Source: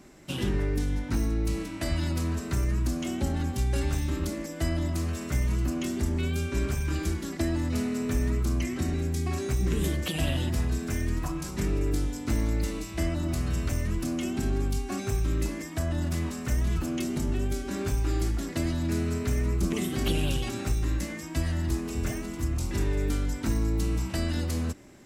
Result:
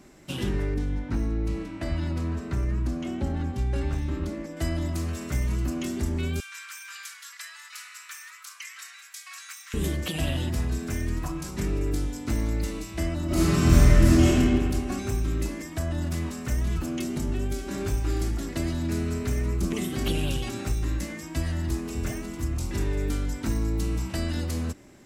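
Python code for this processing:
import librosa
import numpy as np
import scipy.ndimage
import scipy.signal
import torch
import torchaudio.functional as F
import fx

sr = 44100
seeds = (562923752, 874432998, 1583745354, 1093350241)

y = fx.lowpass(x, sr, hz=2100.0, slope=6, at=(0.74, 4.57))
y = fx.steep_highpass(y, sr, hz=1200.0, slope=36, at=(6.4, 9.74))
y = fx.reverb_throw(y, sr, start_s=13.26, length_s=1.02, rt60_s=2.4, drr_db=-12.0)
y = fx.echo_throw(y, sr, start_s=17.0, length_s=0.68, ms=580, feedback_pct=65, wet_db=-10.5)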